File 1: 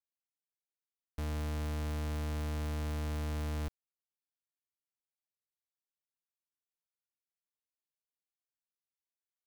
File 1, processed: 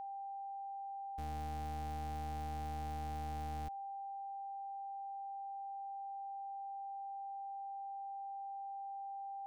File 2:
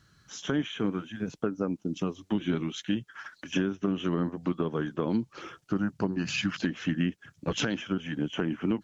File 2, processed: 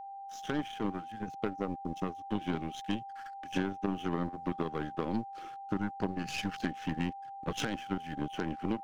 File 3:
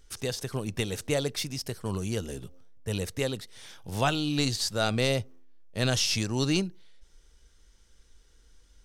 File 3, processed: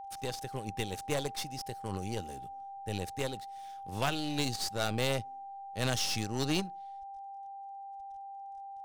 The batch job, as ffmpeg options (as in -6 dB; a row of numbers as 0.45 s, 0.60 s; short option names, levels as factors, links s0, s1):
-af "aeval=exprs='sgn(val(0))*max(abs(val(0))-0.00282,0)':c=same,aeval=exprs='0.251*(cos(1*acos(clip(val(0)/0.251,-1,1)))-cos(1*PI/2))+0.0501*(cos(6*acos(clip(val(0)/0.251,-1,1)))-cos(6*PI/2))+0.00794*(cos(7*acos(clip(val(0)/0.251,-1,1)))-cos(7*PI/2))+0.0501*(cos(8*acos(clip(val(0)/0.251,-1,1)))-cos(8*PI/2))':c=same,aeval=exprs='val(0)+0.0141*sin(2*PI*790*n/s)':c=same,volume=0.562"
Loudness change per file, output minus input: -6.5 LU, -5.5 LU, -6.5 LU